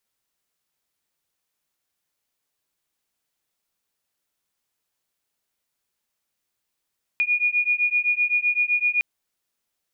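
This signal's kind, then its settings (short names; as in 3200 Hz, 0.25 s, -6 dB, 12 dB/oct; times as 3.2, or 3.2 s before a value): beating tones 2440 Hz, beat 7.8 Hz, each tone -22 dBFS 1.81 s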